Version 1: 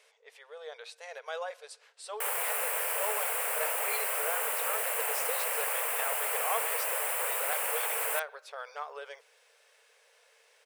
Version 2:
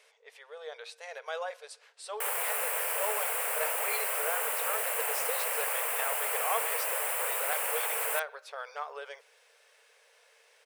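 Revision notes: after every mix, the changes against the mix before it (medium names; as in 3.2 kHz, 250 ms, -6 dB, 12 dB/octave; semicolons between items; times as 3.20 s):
reverb: on, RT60 0.45 s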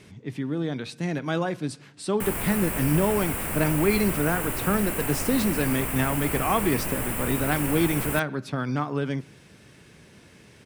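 speech +7.0 dB; master: remove brick-wall FIR high-pass 430 Hz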